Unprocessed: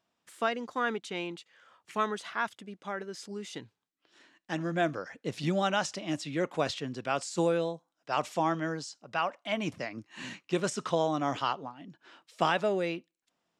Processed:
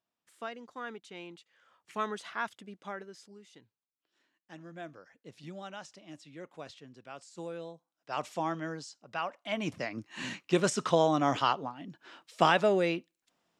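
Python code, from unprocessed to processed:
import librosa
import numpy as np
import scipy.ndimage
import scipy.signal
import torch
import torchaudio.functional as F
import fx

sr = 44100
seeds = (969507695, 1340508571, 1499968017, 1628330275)

y = fx.gain(x, sr, db=fx.line((1.09, -10.5), (2.13, -3.0), (2.88, -3.0), (3.45, -15.5), (7.32, -15.5), (8.21, -4.5), (9.28, -4.5), (10.07, 3.0)))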